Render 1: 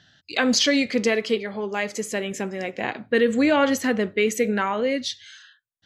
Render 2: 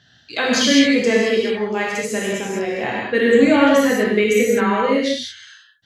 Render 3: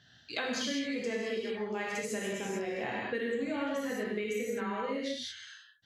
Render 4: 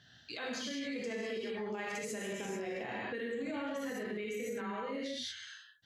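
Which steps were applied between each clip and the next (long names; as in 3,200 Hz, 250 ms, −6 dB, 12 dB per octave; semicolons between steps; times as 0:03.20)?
reverb whose tail is shaped and stops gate 230 ms flat, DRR −5 dB; dynamic equaliser 5,200 Hz, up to −4 dB, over −33 dBFS, Q 1.9; level −1 dB
downward compressor 6 to 1, threshold −25 dBFS, peak gain reduction 16 dB; level −7 dB
brickwall limiter −31 dBFS, peak gain reduction 11.5 dB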